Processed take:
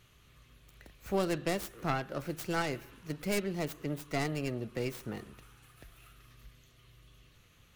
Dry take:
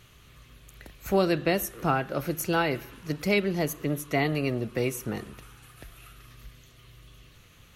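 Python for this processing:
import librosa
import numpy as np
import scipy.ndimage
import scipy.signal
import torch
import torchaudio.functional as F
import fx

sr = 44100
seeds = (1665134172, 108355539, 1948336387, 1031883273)

y = fx.tracing_dist(x, sr, depth_ms=0.42)
y = F.gain(torch.from_numpy(y), -7.5).numpy()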